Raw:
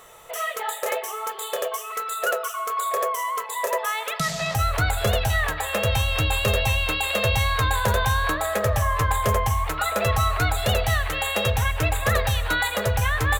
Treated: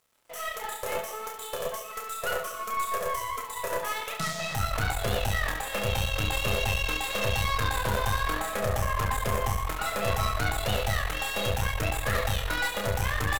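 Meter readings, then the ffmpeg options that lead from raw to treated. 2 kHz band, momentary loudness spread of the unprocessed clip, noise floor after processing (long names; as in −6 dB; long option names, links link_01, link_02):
−5.5 dB, 6 LU, −40 dBFS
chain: -af "aeval=exprs='sgn(val(0))*max(abs(val(0))-0.00708,0)':channel_layout=same,aecho=1:1:30|69|119.7|185.6|271.3:0.631|0.398|0.251|0.158|0.1,aeval=exprs='(tanh(8.91*val(0)+0.75)-tanh(0.75))/8.91':channel_layout=same,volume=-2.5dB"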